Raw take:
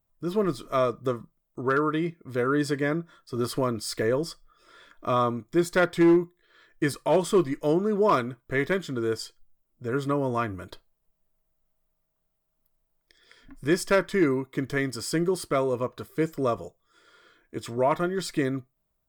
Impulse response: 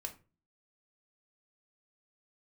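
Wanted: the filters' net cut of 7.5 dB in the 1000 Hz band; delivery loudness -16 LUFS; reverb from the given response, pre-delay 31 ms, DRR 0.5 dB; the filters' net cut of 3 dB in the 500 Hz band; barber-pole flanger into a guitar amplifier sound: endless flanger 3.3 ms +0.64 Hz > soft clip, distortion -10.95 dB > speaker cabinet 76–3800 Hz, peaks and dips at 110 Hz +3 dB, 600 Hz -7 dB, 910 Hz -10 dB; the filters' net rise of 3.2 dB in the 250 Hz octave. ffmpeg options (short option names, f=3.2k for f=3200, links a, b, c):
-filter_complex "[0:a]equalizer=f=250:t=o:g=7.5,equalizer=f=500:t=o:g=-4.5,equalizer=f=1k:t=o:g=-5,asplit=2[a][b];[1:a]atrim=start_sample=2205,adelay=31[c];[b][c]afir=irnorm=-1:irlink=0,volume=1.5dB[d];[a][d]amix=inputs=2:normalize=0,asplit=2[e][f];[f]adelay=3.3,afreqshift=0.64[g];[e][g]amix=inputs=2:normalize=1,asoftclip=threshold=-21dB,highpass=76,equalizer=f=110:t=q:w=4:g=3,equalizer=f=600:t=q:w=4:g=-7,equalizer=f=910:t=q:w=4:g=-10,lowpass=f=3.8k:w=0.5412,lowpass=f=3.8k:w=1.3066,volume=14.5dB"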